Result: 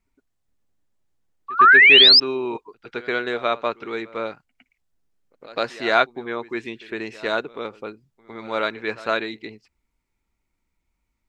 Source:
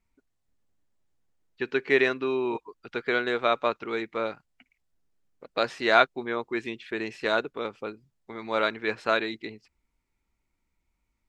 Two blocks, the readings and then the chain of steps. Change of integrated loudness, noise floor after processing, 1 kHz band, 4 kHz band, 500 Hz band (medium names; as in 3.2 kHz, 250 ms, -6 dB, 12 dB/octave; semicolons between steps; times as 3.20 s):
+12.0 dB, -76 dBFS, +7.0 dB, +18.5 dB, +1.5 dB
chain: painted sound rise, 1.59–2.20 s, 1.1–5.3 kHz -12 dBFS; pre-echo 108 ms -18.5 dB; trim +1.5 dB